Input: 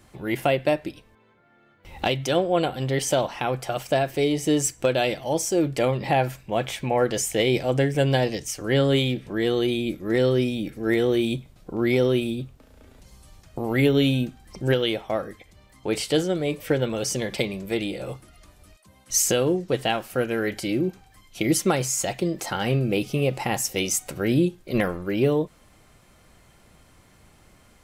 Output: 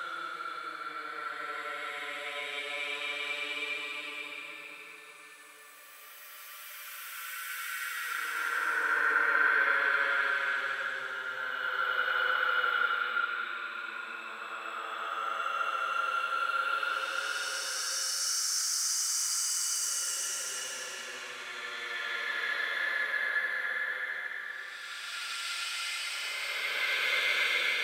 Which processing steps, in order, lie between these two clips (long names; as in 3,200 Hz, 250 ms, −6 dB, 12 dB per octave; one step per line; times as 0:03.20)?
one-sided soft clipper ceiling −15 dBFS
extreme stretch with random phases 26×, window 0.10 s, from 0:16.36
high-pass with resonance 1,400 Hz, resonance Q 7.1
level −3.5 dB